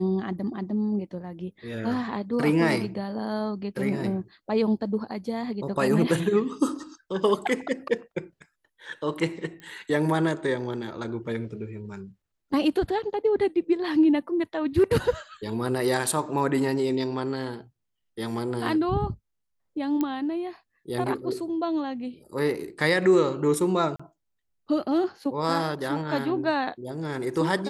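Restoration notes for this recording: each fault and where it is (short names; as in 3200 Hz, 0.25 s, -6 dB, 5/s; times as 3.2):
9.6 pop -29 dBFS
20.01 pop -14 dBFS
23.96–24 gap 35 ms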